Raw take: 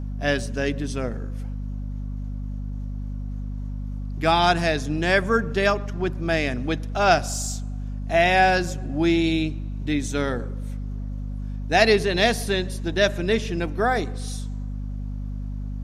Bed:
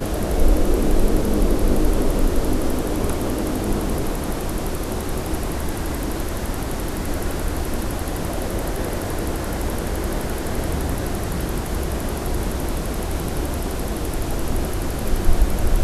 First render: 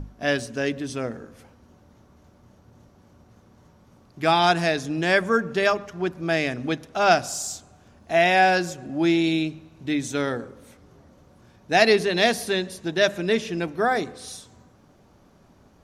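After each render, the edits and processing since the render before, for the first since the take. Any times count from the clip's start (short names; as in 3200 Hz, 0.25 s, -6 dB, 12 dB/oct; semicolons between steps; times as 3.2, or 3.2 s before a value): notches 50/100/150/200/250 Hz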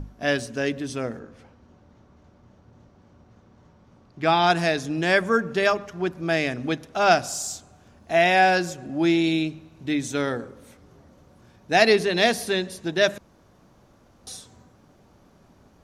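1.19–4.5 air absorption 82 m; 13.18–14.27 room tone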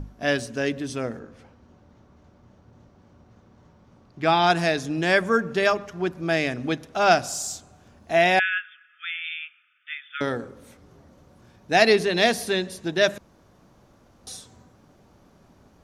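8.39–10.21 brick-wall FIR band-pass 1200–3600 Hz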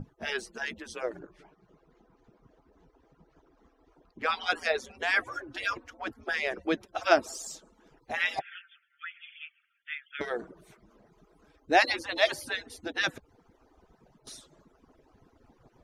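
median-filter separation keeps percussive; high shelf 3300 Hz -9 dB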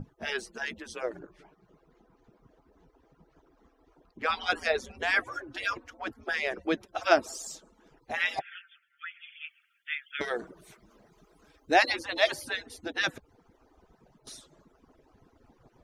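4.3–5.2 low shelf 200 Hz +9 dB; 9.44–11.74 high shelf 2100 Hz +7 dB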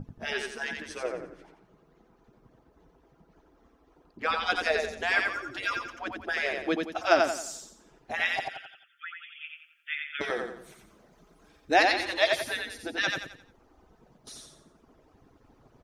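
feedback echo 88 ms, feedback 37%, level -4 dB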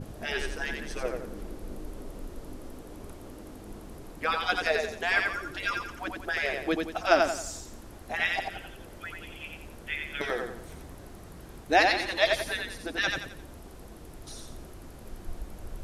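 add bed -22 dB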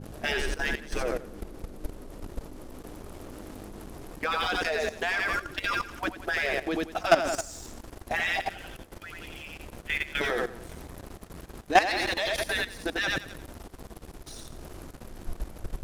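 sample leveller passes 2; level quantiser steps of 14 dB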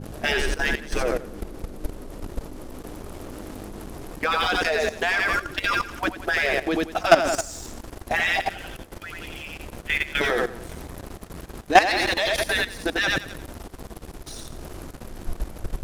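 gain +5.5 dB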